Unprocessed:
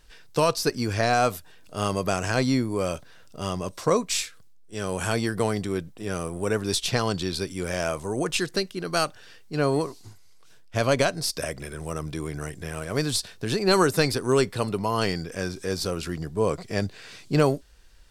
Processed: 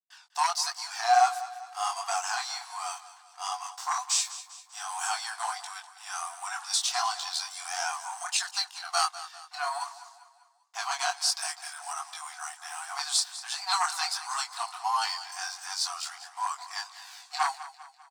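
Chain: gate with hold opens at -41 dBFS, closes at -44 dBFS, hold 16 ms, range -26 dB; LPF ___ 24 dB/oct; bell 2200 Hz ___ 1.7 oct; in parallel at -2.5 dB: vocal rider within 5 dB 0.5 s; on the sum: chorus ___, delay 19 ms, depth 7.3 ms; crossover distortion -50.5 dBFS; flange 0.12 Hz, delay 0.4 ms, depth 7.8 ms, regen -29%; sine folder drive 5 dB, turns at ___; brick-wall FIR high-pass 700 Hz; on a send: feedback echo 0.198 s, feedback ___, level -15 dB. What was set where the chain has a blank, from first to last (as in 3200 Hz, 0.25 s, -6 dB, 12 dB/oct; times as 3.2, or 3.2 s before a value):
8600 Hz, -13.5 dB, 1.4 Hz, -10.5 dBFS, 47%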